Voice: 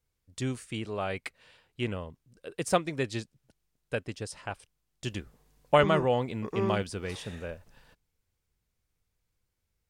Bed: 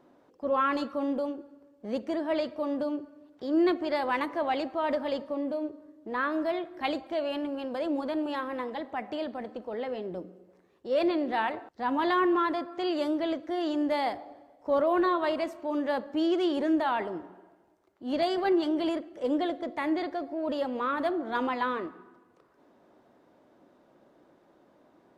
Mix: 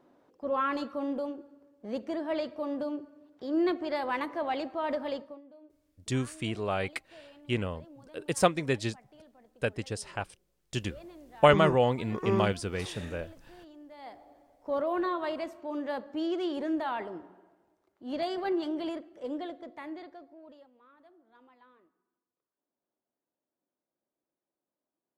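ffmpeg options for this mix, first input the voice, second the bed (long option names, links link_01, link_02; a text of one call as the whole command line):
ffmpeg -i stem1.wav -i stem2.wav -filter_complex "[0:a]adelay=5700,volume=2dB[link_01];[1:a]volume=14.5dB,afade=type=out:start_time=5.11:duration=0.3:silence=0.105925,afade=type=in:start_time=13.96:duration=0.61:silence=0.133352,afade=type=out:start_time=18.69:duration=2.01:silence=0.0501187[link_02];[link_01][link_02]amix=inputs=2:normalize=0" out.wav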